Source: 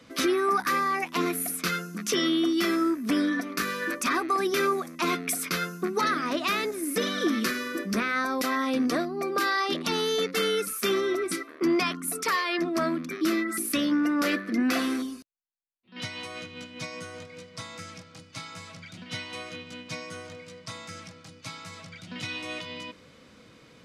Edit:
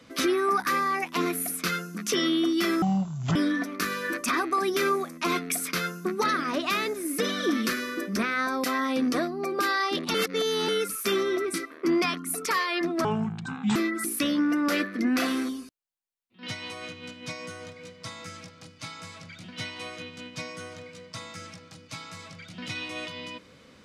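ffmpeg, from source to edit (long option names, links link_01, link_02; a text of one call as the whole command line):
ffmpeg -i in.wav -filter_complex "[0:a]asplit=7[link_01][link_02][link_03][link_04][link_05][link_06][link_07];[link_01]atrim=end=2.824[link_08];[link_02]atrim=start=2.82:end=3.13,asetpts=PTS-STARTPTS,asetrate=25578,aresample=44100[link_09];[link_03]atrim=start=3.126:end=9.922[link_10];[link_04]atrim=start=9.918:end=10.462,asetpts=PTS-STARTPTS,areverse[link_11];[link_05]atrim=start=10.458:end=12.824[link_12];[link_06]atrim=start=12.82:end=13.29,asetpts=PTS-STARTPTS,asetrate=29106,aresample=44100[link_13];[link_07]atrim=start=13.286[link_14];[link_08][link_09]acrossfade=duration=0.004:curve1=hsin:curve2=hsin[link_15];[link_15][link_10]acrossfade=duration=0.004:curve1=hsin:curve2=hsin[link_16];[link_16][link_11]acrossfade=duration=0.004:curve1=hsin:curve2=hsin[link_17];[link_17][link_12]acrossfade=duration=0.004:curve1=hsin:curve2=hsin[link_18];[link_18][link_13]acrossfade=duration=0.004:curve1=hsin:curve2=hsin[link_19];[link_19][link_14]acrossfade=duration=0.004:curve1=hsin:curve2=hsin" out.wav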